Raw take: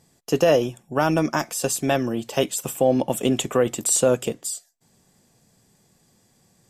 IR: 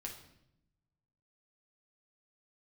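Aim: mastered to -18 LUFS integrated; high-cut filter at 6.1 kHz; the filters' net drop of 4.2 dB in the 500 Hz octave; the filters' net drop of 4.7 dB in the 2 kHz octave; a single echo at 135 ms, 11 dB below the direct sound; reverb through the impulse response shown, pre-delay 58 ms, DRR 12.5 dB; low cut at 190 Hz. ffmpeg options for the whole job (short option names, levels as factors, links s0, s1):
-filter_complex "[0:a]highpass=190,lowpass=6100,equalizer=f=500:t=o:g=-4.5,equalizer=f=2000:t=o:g=-6.5,aecho=1:1:135:0.282,asplit=2[s0][s1];[1:a]atrim=start_sample=2205,adelay=58[s2];[s1][s2]afir=irnorm=-1:irlink=0,volume=0.316[s3];[s0][s3]amix=inputs=2:normalize=0,volume=2.37"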